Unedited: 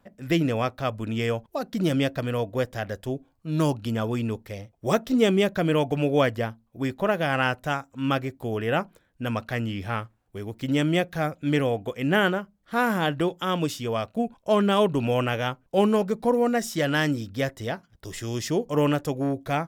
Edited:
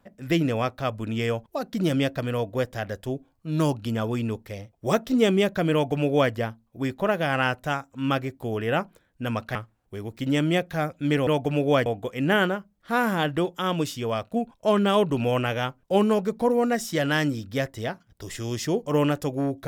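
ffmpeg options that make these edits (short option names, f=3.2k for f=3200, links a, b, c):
-filter_complex "[0:a]asplit=4[a][b][c][d];[a]atrim=end=9.552[e];[b]atrim=start=9.968:end=11.692[f];[c]atrim=start=5.728:end=6.322[g];[d]atrim=start=11.688[h];[e][f]acrossfade=d=0.004:c1=hsin:c2=hsin[i];[i][g]acrossfade=d=0.004:c1=hsin:c2=hsin[j];[j][h]acrossfade=d=0.004:c1=hsin:c2=hsin"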